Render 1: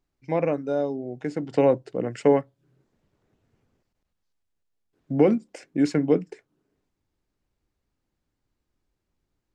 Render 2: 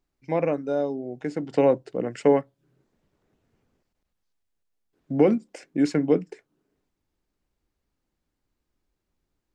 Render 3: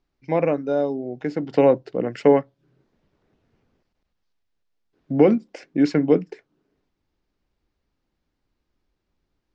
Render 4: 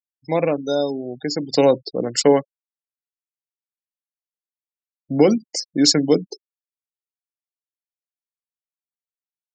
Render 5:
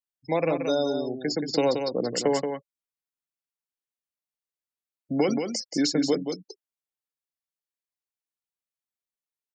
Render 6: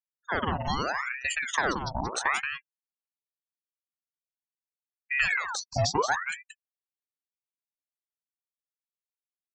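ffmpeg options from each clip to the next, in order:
-af "equalizer=f=110:w=2.6:g=-5.5"
-af "lowpass=f=5.7k:w=0.5412,lowpass=f=5.7k:w=1.3066,volume=3.5dB"
-af "aexciter=amount=2.7:drive=10:freq=3.6k,afftfilt=real='re*gte(hypot(re,im),0.0224)':imag='im*gte(hypot(re,im),0.0224)':win_size=1024:overlap=0.75,aemphasis=mode=production:type=75fm,volume=1.5dB"
-filter_complex "[0:a]acrossover=split=190|930[a][b][c];[a]acompressor=threshold=-38dB:ratio=4[d];[b]acompressor=threshold=-20dB:ratio=4[e];[c]acompressor=threshold=-26dB:ratio=4[f];[d][e][f]amix=inputs=3:normalize=0,aecho=1:1:178:0.473,volume=-2.5dB"
-af "afftdn=nr=25:nf=-36,aecho=1:1:0.8:0.39,aeval=exprs='val(0)*sin(2*PI*1300*n/s+1300*0.7/0.77*sin(2*PI*0.77*n/s))':c=same"

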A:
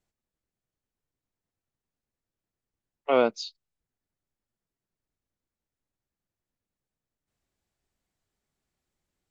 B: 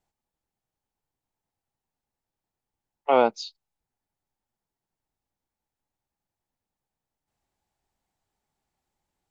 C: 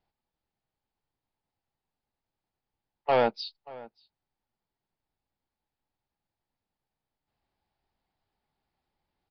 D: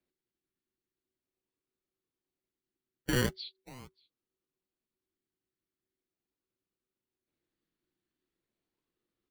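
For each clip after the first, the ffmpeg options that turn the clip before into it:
-af "equalizer=f=840:t=o:w=0.44:g=11.5"
-filter_complex "[0:a]aresample=11025,asoftclip=type=tanh:threshold=-15dB,aresample=44100,asplit=2[a][b];[b]adelay=583.1,volume=-20dB,highshelf=f=4k:g=-13.1[c];[a][c]amix=inputs=2:normalize=0"
-filter_complex "[0:a]acrossover=split=1200[a][b];[a]acrusher=samples=25:mix=1:aa=0.000001:lfo=1:lforange=15:lforate=0.41[c];[c][b]amix=inputs=2:normalize=0,afreqshift=-380,volume=-5.5dB"

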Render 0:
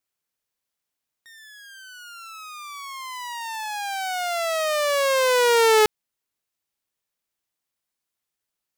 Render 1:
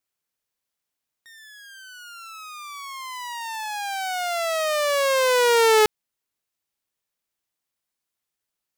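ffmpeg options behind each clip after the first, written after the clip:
-af anull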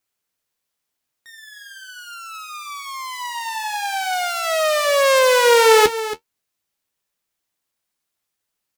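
-af "flanger=delay=9.3:depth=6.1:regen=-43:speed=0.47:shape=sinusoidal,aecho=1:1:276:0.224,volume=8.5dB"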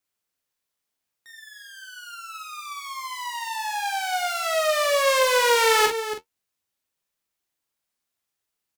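-filter_complex "[0:a]acrossover=split=590|1200[a][b][c];[a]asoftclip=type=hard:threshold=-25dB[d];[d][b][c]amix=inputs=3:normalize=0,asplit=2[e][f];[f]adelay=42,volume=-5.5dB[g];[e][g]amix=inputs=2:normalize=0,volume=-4.5dB"

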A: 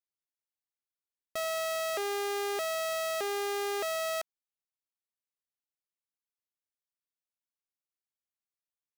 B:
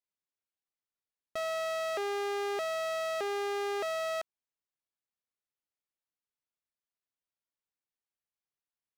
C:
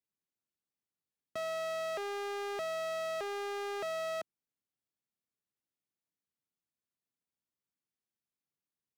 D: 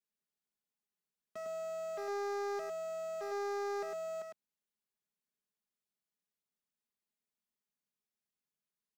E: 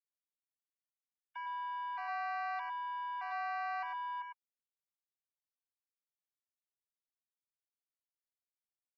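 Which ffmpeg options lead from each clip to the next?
-af "aemphasis=mode=reproduction:type=50kf"
-filter_complex "[0:a]highpass=110,acrossover=split=340[a][b];[a]aeval=exprs='0.0106*sin(PI/2*2.51*val(0)/0.0106)':c=same[c];[c][b]amix=inputs=2:normalize=0,volume=-4dB"
-af "aecho=1:1:4.8:0.98,alimiter=level_in=6dB:limit=-24dB:level=0:latency=1:release=27,volume=-6dB,aecho=1:1:104:0.596,volume=-6dB"
-af "highshelf=f=2.6k:g=7,afftfilt=real='re*gte(hypot(re,im),0.00398)':imag='im*gte(hypot(re,im),0.00398)':win_size=1024:overlap=0.75,highpass=f=380:t=q:w=0.5412,highpass=f=380:t=q:w=1.307,lowpass=f=3.6k:t=q:w=0.5176,lowpass=f=3.6k:t=q:w=0.7071,lowpass=f=3.6k:t=q:w=1.932,afreqshift=340"

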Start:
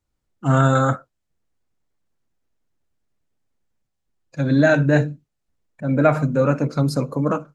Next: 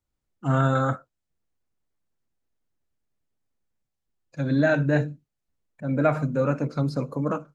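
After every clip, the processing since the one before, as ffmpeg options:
-filter_complex "[0:a]acrossover=split=5000[a][b];[b]acompressor=threshold=-51dB:ratio=4:attack=1:release=60[c];[a][c]amix=inputs=2:normalize=0,volume=-5.5dB"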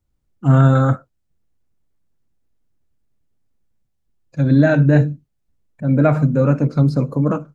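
-af "lowshelf=f=340:g=10.5,volume=2.5dB"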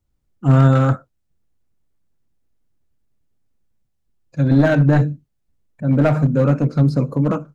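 -af "aeval=exprs='clip(val(0),-1,0.282)':c=same"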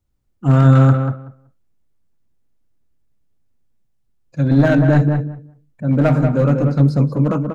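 -filter_complex "[0:a]asplit=2[a][b];[b]adelay=188,lowpass=f=1.8k:p=1,volume=-5dB,asplit=2[c][d];[d]adelay=188,lowpass=f=1.8k:p=1,volume=0.16,asplit=2[e][f];[f]adelay=188,lowpass=f=1.8k:p=1,volume=0.16[g];[a][c][e][g]amix=inputs=4:normalize=0"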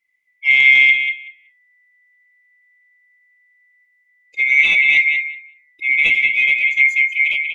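-af "afftfilt=real='real(if(lt(b,920),b+92*(1-2*mod(floor(b/92),2)),b),0)':imag='imag(if(lt(b,920),b+92*(1-2*mod(floor(b/92),2)),b),0)':win_size=2048:overlap=0.75,volume=-1dB"

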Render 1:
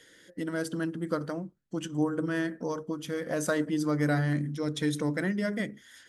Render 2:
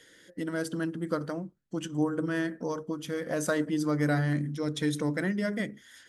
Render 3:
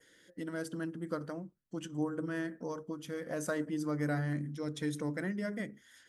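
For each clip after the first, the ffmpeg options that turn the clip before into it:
-af anull
-af "adynamicequalizer=threshold=0.00141:dfrequency=3700:dqfactor=1.8:tfrequency=3700:tqfactor=1.8:attack=5:release=100:ratio=0.375:range=3:mode=cutabove:tftype=bell,volume=-6.5dB"

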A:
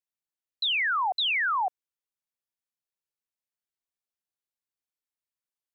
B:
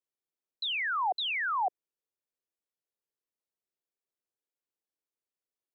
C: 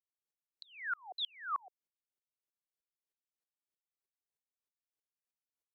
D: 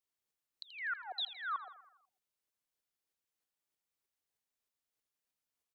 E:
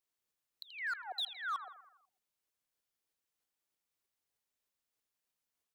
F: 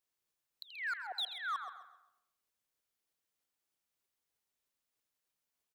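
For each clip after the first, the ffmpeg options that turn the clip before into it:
-af "equalizer=f=420:t=o:w=1.5:g=12.5,volume=-6.5dB"
-af "aeval=exprs='val(0)*pow(10,-39*if(lt(mod(-3.2*n/s,1),2*abs(-3.2)/1000),1-mod(-3.2*n/s,1)/(2*abs(-3.2)/1000),(mod(-3.2*n/s,1)-2*abs(-3.2)/1000)/(1-2*abs(-3.2)/1000))/20)':c=same"
-filter_complex "[0:a]acompressor=threshold=-41dB:ratio=3,asplit=2[a][b];[b]aecho=0:1:82|164|246|328|410|492:0.224|0.123|0.0677|0.0372|0.0205|0.0113[c];[a][c]amix=inputs=2:normalize=0,volume=4dB"
-af "volume=34dB,asoftclip=hard,volume=-34dB,volume=1dB"
-af "aecho=1:1:132|264|396|528:0.282|0.093|0.0307|0.0101"

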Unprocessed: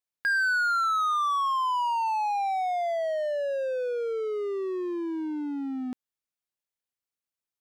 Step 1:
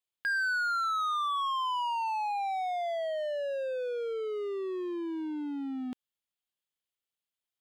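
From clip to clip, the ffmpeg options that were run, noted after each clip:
-filter_complex "[0:a]equalizer=f=3.2k:t=o:w=0.53:g=8,bandreject=f=5.7k:w=9.2,asplit=2[a][b];[b]alimiter=level_in=6dB:limit=-24dB:level=0:latency=1,volume=-6dB,volume=-3dB[c];[a][c]amix=inputs=2:normalize=0,volume=-7dB"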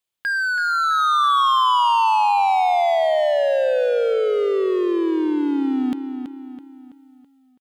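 -filter_complex "[0:a]dynaudnorm=f=640:g=3:m=7dB,asplit=2[a][b];[b]adelay=329,lowpass=f=4.7k:p=1,volume=-8dB,asplit=2[c][d];[d]adelay=329,lowpass=f=4.7k:p=1,volume=0.46,asplit=2[e][f];[f]adelay=329,lowpass=f=4.7k:p=1,volume=0.46,asplit=2[g][h];[h]adelay=329,lowpass=f=4.7k:p=1,volume=0.46,asplit=2[i][j];[j]adelay=329,lowpass=f=4.7k:p=1,volume=0.46[k];[c][e][g][i][k]amix=inputs=5:normalize=0[l];[a][l]amix=inputs=2:normalize=0,volume=7dB"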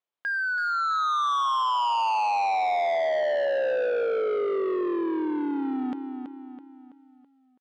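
-af "bandpass=f=750:t=q:w=0.73:csg=0,asoftclip=type=tanh:threshold=-22.5dB"

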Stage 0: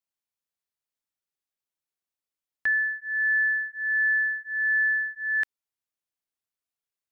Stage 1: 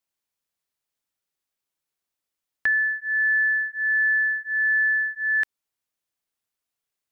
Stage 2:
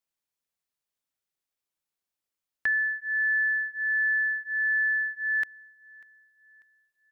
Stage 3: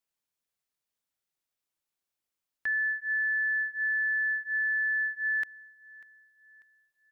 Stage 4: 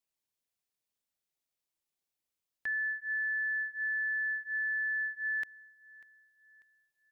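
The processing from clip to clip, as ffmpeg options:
-af "acompressor=threshold=-27dB:ratio=2,volume=5.5dB"
-af "aecho=1:1:593|1186|1779:0.0668|0.0261|0.0102,volume=-4dB"
-af "alimiter=level_in=1dB:limit=-24dB:level=0:latency=1,volume=-1dB"
-af "equalizer=f=1.4k:t=o:w=0.91:g=-4.5,volume=-1.5dB"

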